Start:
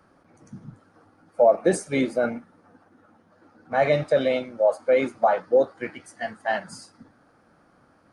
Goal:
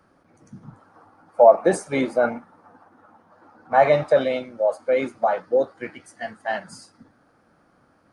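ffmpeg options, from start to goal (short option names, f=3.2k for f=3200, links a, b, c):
-filter_complex "[0:a]asettb=1/sr,asplit=3[a][b][c];[a]atrim=end=0.634[d];[b]atrim=start=0.63:end=4.24,asetpts=PTS-STARTPTS,afade=t=in:d=0.004:c=qsin,afade=t=out:st=3.606:d=0.004:c=qsin,equalizer=f=940:w=1.2:g=11[e];[c]atrim=start=4.236[f];[d][e]acrossfade=d=0.004:c1=hsin:c2=qsin[g];[g][f]acrossfade=d=0.004:c1=qsin:c2=hsin,volume=-1dB"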